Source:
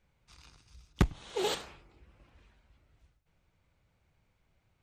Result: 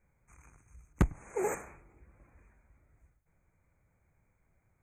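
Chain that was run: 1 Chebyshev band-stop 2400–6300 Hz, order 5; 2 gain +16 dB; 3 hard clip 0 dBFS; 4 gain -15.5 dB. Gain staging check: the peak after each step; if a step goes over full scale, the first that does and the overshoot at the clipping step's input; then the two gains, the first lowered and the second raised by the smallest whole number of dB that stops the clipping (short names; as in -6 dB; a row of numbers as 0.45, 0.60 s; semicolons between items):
-10.5, +5.5, 0.0, -15.5 dBFS; step 2, 5.5 dB; step 2 +10 dB, step 4 -9.5 dB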